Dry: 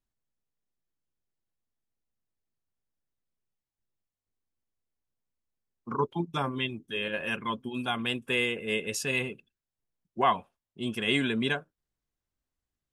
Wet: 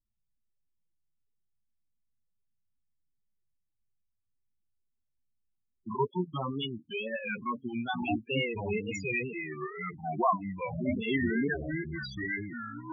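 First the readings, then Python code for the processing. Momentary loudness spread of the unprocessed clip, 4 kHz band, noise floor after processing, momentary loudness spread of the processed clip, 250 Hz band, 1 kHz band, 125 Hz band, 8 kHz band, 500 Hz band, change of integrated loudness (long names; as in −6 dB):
9 LU, −7.5 dB, −80 dBFS, 9 LU, +1.0 dB, −1.5 dB, +1.0 dB, −11.5 dB, −1.0 dB, −3.0 dB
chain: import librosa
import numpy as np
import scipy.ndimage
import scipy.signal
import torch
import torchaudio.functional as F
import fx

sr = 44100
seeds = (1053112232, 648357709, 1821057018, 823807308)

y = fx.echo_pitch(x, sr, ms=93, semitones=-5, count=2, db_per_echo=-3.0)
y = fx.wow_flutter(y, sr, seeds[0], rate_hz=2.1, depth_cents=120.0)
y = fx.spec_topn(y, sr, count=8)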